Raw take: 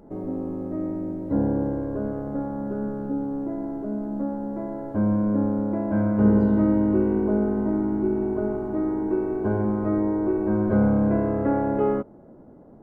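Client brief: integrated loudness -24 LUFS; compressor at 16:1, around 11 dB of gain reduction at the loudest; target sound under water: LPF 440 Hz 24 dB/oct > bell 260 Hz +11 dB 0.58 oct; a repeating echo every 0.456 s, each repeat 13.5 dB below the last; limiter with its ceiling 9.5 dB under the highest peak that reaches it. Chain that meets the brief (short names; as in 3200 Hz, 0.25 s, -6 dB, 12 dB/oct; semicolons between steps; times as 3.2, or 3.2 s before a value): compressor 16:1, threshold -25 dBFS; limiter -25.5 dBFS; LPF 440 Hz 24 dB/oct; bell 260 Hz +11 dB 0.58 oct; feedback echo 0.456 s, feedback 21%, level -13.5 dB; gain +3 dB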